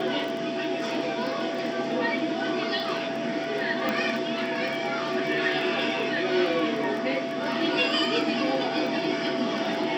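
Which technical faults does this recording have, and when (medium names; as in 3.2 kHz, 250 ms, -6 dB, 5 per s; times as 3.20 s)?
crackle 12 per s -32 dBFS
whine 670 Hz -31 dBFS
3.89 s: pop -13 dBFS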